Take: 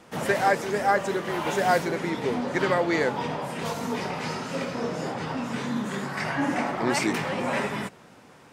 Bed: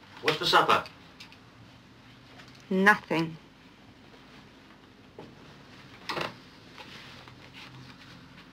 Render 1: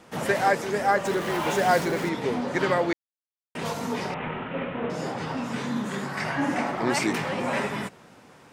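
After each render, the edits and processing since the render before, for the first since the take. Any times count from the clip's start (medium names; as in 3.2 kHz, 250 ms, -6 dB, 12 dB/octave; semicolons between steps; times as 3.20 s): 1.05–2.09 s: jump at every zero crossing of -33 dBFS; 2.93–3.55 s: mute; 4.14–4.90 s: CVSD coder 16 kbps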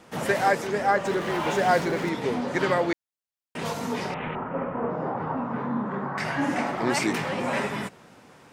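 0.67–2.08 s: treble shelf 8.5 kHz -10 dB; 4.35–6.18 s: resonant low-pass 1.1 kHz, resonance Q 1.7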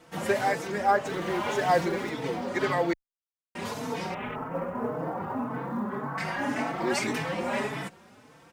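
companded quantiser 8-bit; endless flanger 4.1 ms +1.8 Hz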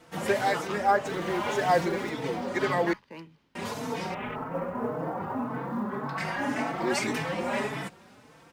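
add bed -16 dB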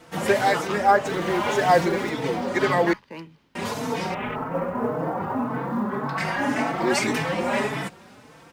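trim +5.5 dB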